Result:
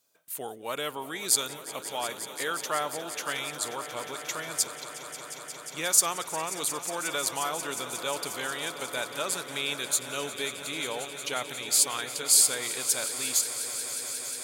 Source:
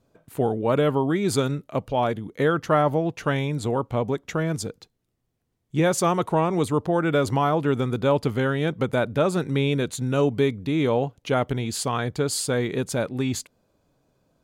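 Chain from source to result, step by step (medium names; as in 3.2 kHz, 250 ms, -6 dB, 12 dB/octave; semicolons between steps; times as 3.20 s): differentiator; echo with a slow build-up 179 ms, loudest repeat 5, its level -15.5 dB; trim +8.5 dB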